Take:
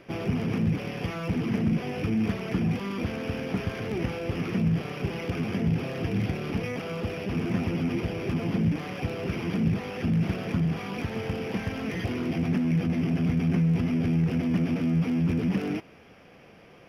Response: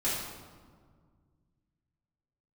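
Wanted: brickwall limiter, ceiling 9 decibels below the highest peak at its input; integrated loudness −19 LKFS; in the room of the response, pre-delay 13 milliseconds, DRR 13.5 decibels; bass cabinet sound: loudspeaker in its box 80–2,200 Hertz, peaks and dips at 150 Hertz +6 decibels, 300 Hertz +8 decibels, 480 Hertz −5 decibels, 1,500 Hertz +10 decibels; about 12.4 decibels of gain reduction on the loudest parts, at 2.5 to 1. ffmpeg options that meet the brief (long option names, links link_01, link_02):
-filter_complex "[0:a]acompressor=threshold=-40dB:ratio=2.5,alimiter=level_in=9.5dB:limit=-24dB:level=0:latency=1,volume=-9.5dB,asplit=2[link_01][link_02];[1:a]atrim=start_sample=2205,adelay=13[link_03];[link_02][link_03]afir=irnorm=-1:irlink=0,volume=-21.5dB[link_04];[link_01][link_04]amix=inputs=2:normalize=0,highpass=frequency=80:width=0.5412,highpass=frequency=80:width=1.3066,equalizer=frequency=150:width_type=q:width=4:gain=6,equalizer=frequency=300:width_type=q:width=4:gain=8,equalizer=frequency=480:width_type=q:width=4:gain=-5,equalizer=frequency=1500:width_type=q:width=4:gain=10,lowpass=frequency=2200:width=0.5412,lowpass=frequency=2200:width=1.3066,volume=19.5dB"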